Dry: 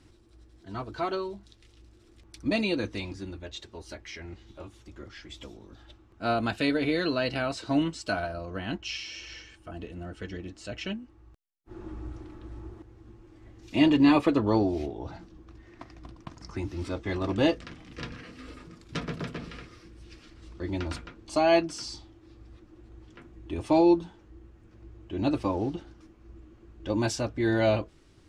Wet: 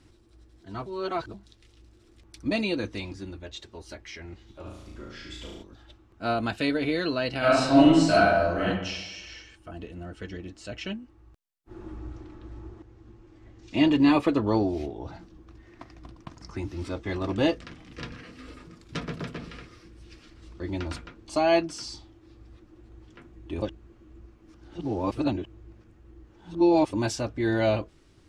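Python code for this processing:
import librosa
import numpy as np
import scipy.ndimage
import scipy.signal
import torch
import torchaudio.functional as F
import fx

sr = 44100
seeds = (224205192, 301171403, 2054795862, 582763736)

y = fx.room_flutter(x, sr, wall_m=6.1, rt60_s=0.84, at=(4.64, 5.62), fade=0.02)
y = fx.reverb_throw(y, sr, start_s=7.38, length_s=1.27, rt60_s=1.0, drr_db=-9.5)
y = fx.lowpass(y, sr, hz=7900.0, slope=24, at=(11.97, 13.9))
y = fx.edit(y, sr, fx.reverse_span(start_s=0.86, length_s=0.48),
    fx.reverse_span(start_s=23.62, length_s=3.31), tone=tone)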